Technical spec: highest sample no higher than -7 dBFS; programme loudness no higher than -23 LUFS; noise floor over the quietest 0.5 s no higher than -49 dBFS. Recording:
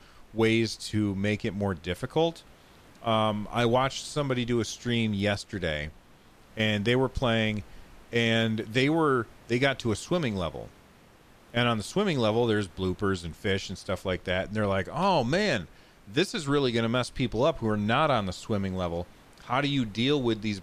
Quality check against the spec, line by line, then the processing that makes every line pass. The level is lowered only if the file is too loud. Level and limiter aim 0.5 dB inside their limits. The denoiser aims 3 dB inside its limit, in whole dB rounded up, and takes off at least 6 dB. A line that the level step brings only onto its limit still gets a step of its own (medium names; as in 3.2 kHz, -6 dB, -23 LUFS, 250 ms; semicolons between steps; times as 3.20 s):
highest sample -12.0 dBFS: pass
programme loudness -27.5 LUFS: pass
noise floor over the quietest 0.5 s -56 dBFS: pass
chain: none needed